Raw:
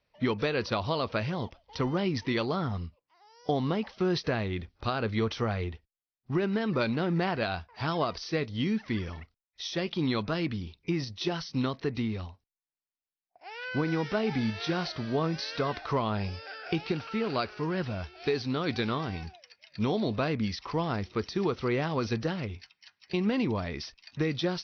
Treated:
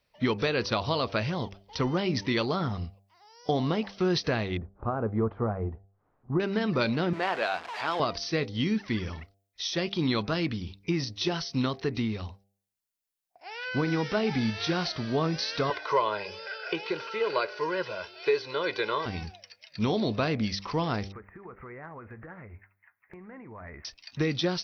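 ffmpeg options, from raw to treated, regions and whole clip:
-filter_complex "[0:a]asettb=1/sr,asplit=3[a][b][c];[a]atrim=end=4.574[d];[b]atrim=start=4.57:end=6.4,asetpts=PTS-STARTPTS,afade=t=in:d=0.004:c=qsin,afade=t=out:st=1.826:d=0.004:c=qsin,lowpass=f=1.2k:w=0.5412,lowpass=f=1.2k:w=1.3066,acompressor=mode=upward:threshold=-46dB:ratio=2.5:attack=3.2:release=140:knee=2.83:detection=peak[e];[c]atrim=start=6.396[f];[d][e]acrossfade=d=0.004:c1=hsin:c2=qsin[g];[g][f]acrossfade=d=0.004:c1=qsin:c2=hsin,asettb=1/sr,asplit=3[h][i][j];[h]atrim=end=7.134[k];[i]atrim=start=7.13:end=8,asetpts=PTS-STARTPTS,afade=t=in:d=0.004:c=qsin,afade=t=out:st=0.866:d=0.004:c=qsin,aeval=exprs='val(0)+0.5*0.0237*sgn(val(0))':c=same,highpass=490,lowpass=3k[l];[j]atrim=start=7.996[m];[k][l]acrossfade=d=0.004:c1=hsin:c2=qsin[n];[n][m]acrossfade=d=0.004:c1=qsin:c2=hsin,asettb=1/sr,asplit=3[o][p][q];[o]atrim=end=15.704[r];[p]atrim=start=15.7:end=19.06,asetpts=PTS-STARTPTS,afade=t=in:d=0.004:c=qsin,afade=t=out:st=3.356:d=0.004:c=qsin,highpass=370,aecho=1:1:2:0.9,atrim=end_sample=148176,acrossover=split=3200[s][t];[t]acompressor=threshold=-51dB:ratio=4:attack=1:release=60[u];[s][u]amix=inputs=2:normalize=0[v];[q]atrim=start=19.056[w];[r][v]acrossfade=d=0.004:c1=hsin:c2=qsin[x];[x][w]acrossfade=d=0.004:c1=qsin:c2=hsin,asettb=1/sr,asplit=3[y][z][aa];[y]atrim=end=21.124[ab];[z]atrim=start=21.12:end=23.85,asetpts=PTS-STARTPTS,afade=t=in:d=0.004:c=qsin,afade=t=out:st=2.726:d=0.004:c=qsin,asuperstop=centerf=4800:order=12:qfactor=0.6,acompressor=threshold=-34dB:ratio=12:attack=3.2:release=140:knee=1:detection=peak,equalizer=f=220:w=0.4:g=-10.5[ac];[aa]atrim=start=23.846[ad];[ab][ac]acrossfade=d=0.004:c1=hsin:c2=qsin[ae];[ae][ad]acrossfade=d=0.004:c1=qsin:c2=hsin,highshelf=f=5.3k:g=7.5,bandreject=f=98.55:t=h:w=4,bandreject=f=197.1:t=h:w=4,bandreject=f=295.65:t=h:w=4,bandreject=f=394.2:t=h:w=4,bandreject=f=492.75:t=h:w=4,bandreject=f=591.3:t=h:w=4,bandreject=f=689.85:t=h:w=4,bandreject=f=788.4:t=h:w=4,volume=1.5dB"

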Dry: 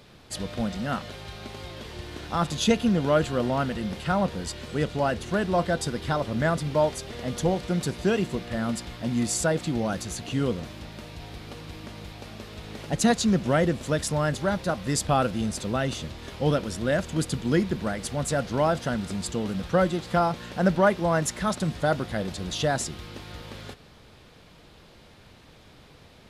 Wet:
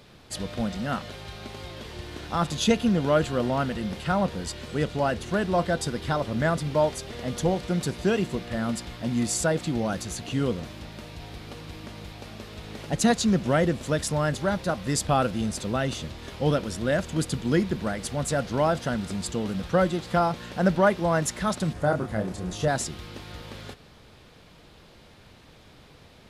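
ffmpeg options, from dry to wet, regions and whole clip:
-filter_complex "[0:a]asettb=1/sr,asplit=3[a][b][c];[a]atrim=end=21.734[d];[b]atrim=start=21.73:end=22.68,asetpts=PTS-STARTPTS,afade=t=in:d=0.004:c=qsin,afade=t=out:st=0.946:d=0.004:c=qsin,lowpass=11k,equalizer=f=3.7k:t=o:w=1.5:g=-10.5,asplit=2[e][f];[f]adelay=28,volume=-5dB[g];[e][g]amix=inputs=2:normalize=0,atrim=end_sample=41895[h];[c]atrim=start=22.676[i];[d][h]acrossfade=d=0.004:c1=hsin:c2=qsin[j];[j][i]acrossfade=d=0.004:c1=qsin:c2=hsin"

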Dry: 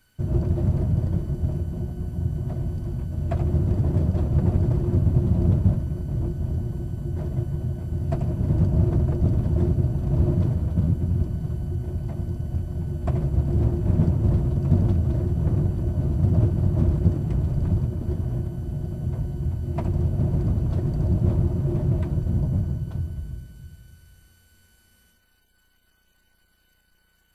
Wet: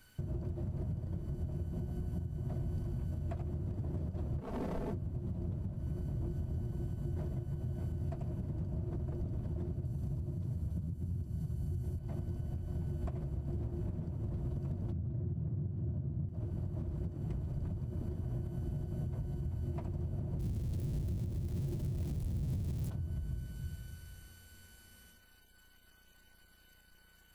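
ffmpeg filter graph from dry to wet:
-filter_complex "[0:a]asettb=1/sr,asplit=3[a][b][c];[a]atrim=end=4.414[d];[b]atrim=start=4.41:end=4.93,asetpts=PTS-STARTPTS,afade=t=in:d=0.004:c=qsin,afade=t=out:st=0.516:d=0.004:c=qsin,aeval=exprs='0.0668*(abs(mod(val(0)/0.0668+3,4)-2)-1)':c=same,aecho=1:1:4.5:0.56,atrim=end_sample=22932[e];[c]atrim=start=4.926[f];[d][e]acrossfade=d=0.004:c1=hsin:c2=qsin[g];[g][f]acrossfade=d=0.004:c1=qsin:c2=hsin,asettb=1/sr,asplit=3[h][i][j];[h]atrim=end=9.854[k];[i]atrim=start=9.85:end=11.99,asetpts=PTS-STARTPTS,afade=t=in:d=0.004:c=qsin,afade=t=out:st=2.136:d=0.004:c=qsin,highpass=50,bass=f=250:g=7,treble=f=4k:g=10[l];[j]atrim=start=11.986[m];[k][l]acrossfade=d=0.004:c1=hsin:c2=qsin[n];[n][m]acrossfade=d=0.004:c1=qsin:c2=hsin,asettb=1/sr,asplit=3[o][p][q];[o]atrim=end=14.924[r];[p]atrim=start=14.92:end=16.29,asetpts=PTS-STARTPTS,afade=t=in:d=0.004:c=qsin,afade=t=out:st=1.366:d=0.004:c=qsin,highpass=f=100:w=0.5412,highpass=f=100:w=1.3066,aemphasis=mode=reproduction:type=riaa[s];[q]atrim=start=16.286[t];[r][s]acrossfade=d=0.004:c1=hsin:c2=qsin[u];[u][t]acrossfade=d=0.004:c1=qsin:c2=hsin,asettb=1/sr,asplit=3[v][w][x];[v]atrim=end=20.394[y];[w]atrim=start=20.39:end=22.9,asetpts=PTS-STARTPTS,afade=t=in:d=0.004:c=qsin,afade=t=out:st=2.506:d=0.004:c=qsin,aeval=exprs='val(0)+0.5*0.0708*sgn(val(0))':c=same,equalizer=f=1.3k:w=0.49:g=-15[z];[x]atrim=start=22.896[aa];[y][z]acrossfade=d=0.004:c1=hsin:c2=qsin[ab];[ab][aa]acrossfade=d=0.004:c1=qsin:c2=hsin,acompressor=threshold=-31dB:ratio=6,alimiter=level_in=6.5dB:limit=-24dB:level=0:latency=1:release=357,volume=-6.5dB,volume=1dB"

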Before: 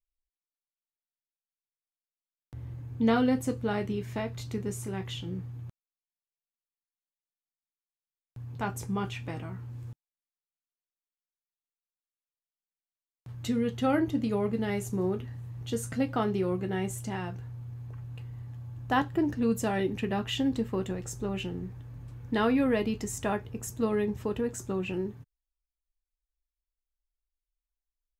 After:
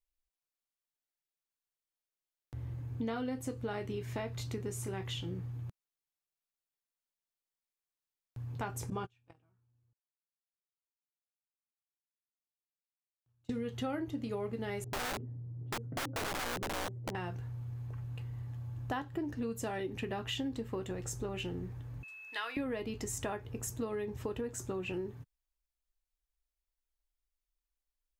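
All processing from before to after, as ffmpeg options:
-filter_complex "[0:a]asettb=1/sr,asplit=3[a][b][c];[a]atrim=end=8.904[d];[b]atrim=start=8.9:end=13.51,asetpts=PTS-STARTPTS,afade=t=in:d=0.004:c=qsin,afade=t=out:st=4.606:d=0.004:c=qsin,lowpass=9.4k,agate=range=-34dB:threshold=-32dB:ratio=16:release=100:detection=peak,bandreject=f=2k:w=7.6[e];[c]atrim=start=13.506[f];[d][e]acrossfade=d=0.004:c1=hsin:c2=qsin[g];[g][f]acrossfade=d=0.004:c1=qsin:c2=hsin,asettb=1/sr,asplit=3[h][i][j];[h]atrim=end=14.844[k];[i]atrim=start=14.84:end=17.15,asetpts=PTS-STARTPTS,afade=t=in:d=0.004:c=qsin,afade=t=out:st=2.306:d=0.004:c=qsin,asuperpass=centerf=230:order=4:qfactor=0.67,aeval=exprs='(mod(28.2*val(0)+1,2)-1)/28.2':c=same[l];[j]atrim=start=17.146[m];[k][l]acrossfade=d=0.004:c1=hsin:c2=qsin[n];[n][m]acrossfade=d=0.004:c1=qsin:c2=hsin,asettb=1/sr,asplit=3[o][p][q];[o]atrim=end=22.034[r];[p]atrim=start=22.03:end=22.57,asetpts=PTS-STARTPTS,afade=t=in:d=0.004:c=qsin,afade=t=out:st=0.536:d=0.004:c=qsin,highpass=1.4k,aeval=exprs='val(0)+0.00447*sin(2*PI*2600*n/s)':c=same[s];[q]atrim=start=22.566[t];[r][s]acrossfade=d=0.004:c1=hsin:c2=qsin[u];[u][t]acrossfade=d=0.004:c1=qsin:c2=hsin,equalizer=f=200:t=o:w=0.33:g=-8,acompressor=threshold=-34dB:ratio=6"

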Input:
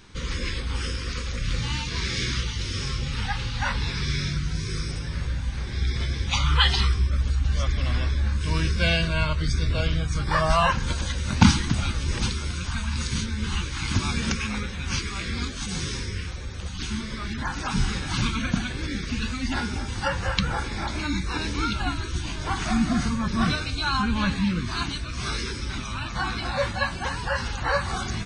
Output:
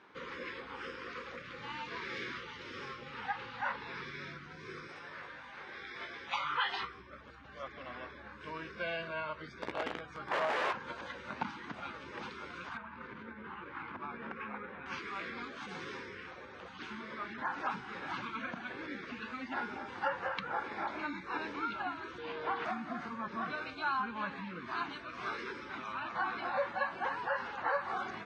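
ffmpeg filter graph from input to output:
-filter_complex "[0:a]asettb=1/sr,asplit=3[a][b][c];[a]atrim=end=4.874[d];[b]atrim=start=4.87:end=6.83,asetpts=PTS-STARTPTS,afade=t=in:d=0.004:c=qsin,afade=t=out:st=1.956:d=0.004:c=qsin,lowshelf=f=400:g=-12,asplit=2[e][f];[f]adelay=20,volume=-6dB[g];[e][g]amix=inputs=2:normalize=0,atrim=end_sample=86436[h];[c]atrim=start=6.826[i];[d][h]acrossfade=d=0.004:c1=hsin:c2=qsin[j];[j][i]acrossfade=d=0.004:c1=qsin:c2=hsin,asettb=1/sr,asplit=3[k][l][m];[k]atrim=end=9.614[n];[l]atrim=start=9.61:end=10.73,asetpts=PTS-STARTPTS,afade=t=in:d=0.004:c=qsin,afade=t=out:st=1.116:d=0.004:c=qsin,aeval=exprs='(mod(6.68*val(0)+1,2)-1)/6.68':c=same,asplit=2[o][p];[p]adelay=16,volume=-9dB[q];[o][q]amix=inputs=2:normalize=0,atrim=end_sample=49392[r];[m]atrim=start=10.726[s];[n][r]acrossfade=d=0.004:c1=hsin:c2=qsin[t];[t][s]acrossfade=d=0.004:c1=qsin:c2=hsin,asettb=1/sr,asplit=3[u][v][w];[u]atrim=end=12.774[x];[v]atrim=start=12.77:end=14.86,asetpts=PTS-STARTPTS,afade=t=in:d=0.004:c=qsin,afade=t=out:st=2.086:d=0.004:c=qsin,lowpass=1.8k,acompressor=threshold=-27dB:ratio=6:attack=3.2:release=140:knee=1:detection=peak[y];[w]atrim=start=14.856[z];[x][y]acrossfade=d=0.004:c1=hsin:c2=qsin[aa];[aa][z]acrossfade=d=0.004:c1=qsin:c2=hsin,asettb=1/sr,asplit=3[ab][ac][ad];[ab]atrim=end=22.184[ae];[ac]atrim=start=22.18:end=22.65,asetpts=PTS-STARTPTS,afade=t=in:d=0.004:c=qsin,afade=t=out:st=0.466:d=0.004:c=qsin,aeval=exprs='val(0)+0.0158*sin(2*PI*470*n/s)':c=same,highshelf=f=5.9k:t=q:w=1.5:g=-13[af];[ad]atrim=start=22.646[ag];[ae][af]acrossfade=d=0.004:c1=hsin:c2=qsin[ah];[ah][ag]acrossfade=d=0.004:c1=qsin:c2=hsin,lowpass=1.6k,acompressor=threshold=-27dB:ratio=4,highpass=450,volume=-1dB"

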